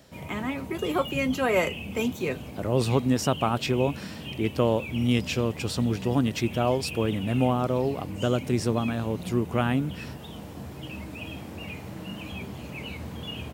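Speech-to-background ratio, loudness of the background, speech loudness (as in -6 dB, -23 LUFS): 11.0 dB, -38.0 LUFS, -27.0 LUFS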